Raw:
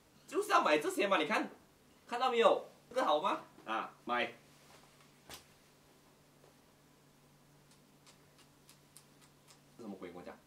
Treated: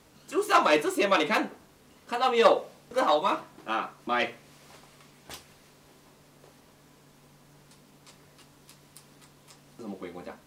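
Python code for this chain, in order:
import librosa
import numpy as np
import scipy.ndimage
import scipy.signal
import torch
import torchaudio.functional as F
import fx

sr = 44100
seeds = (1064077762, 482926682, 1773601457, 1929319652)

y = fx.self_delay(x, sr, depth_ms=0.093)
y = F.gain(torch.from_numpy(y), 8.0).numpy()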